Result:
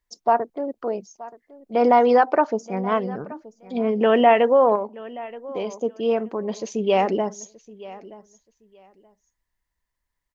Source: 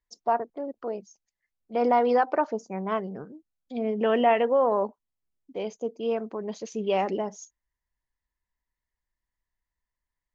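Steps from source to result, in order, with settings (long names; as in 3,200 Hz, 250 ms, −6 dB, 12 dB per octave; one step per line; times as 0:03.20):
on a send: repeating echo 926 ms, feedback 20%, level −19 dB
0:04.75–0:05.71: on the sum: downward compressor 6 to 1, threshold −29 dBFS, peak gain reduction 8 dB
level +6 dB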